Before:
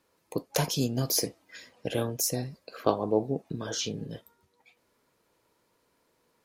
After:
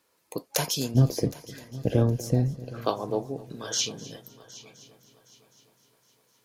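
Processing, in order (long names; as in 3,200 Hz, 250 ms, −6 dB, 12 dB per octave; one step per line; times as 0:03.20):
spectral tilt +1.5 dB per octave, from 0:00.94 −4 dB per octave, from 0:02.81 +2.5 dB per octave
echo machine with several playback heads 255 ms, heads first and third, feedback 48%, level −19.5 dB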